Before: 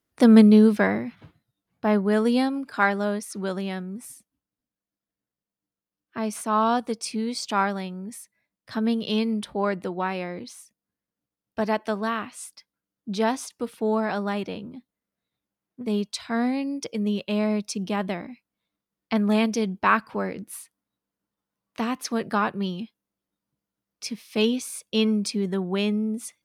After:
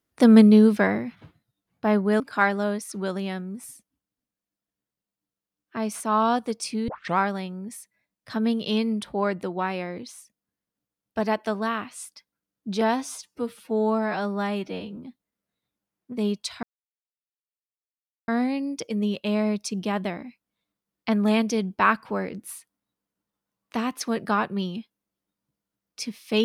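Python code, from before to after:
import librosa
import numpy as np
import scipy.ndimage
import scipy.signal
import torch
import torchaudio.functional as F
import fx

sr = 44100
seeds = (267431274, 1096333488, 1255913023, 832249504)

y = fx.edit(x, sr, fx.cut(start_s=2.2, length_s=0.41),
    fx.tape_start(start_s=7.29, length_s=0.3),
    fx.stretch_span(start_s=13.22, length_s=1.44, factor=1.5),
    fx.insert_silence(at_s=16.32, length_s=1.65), tone=tone)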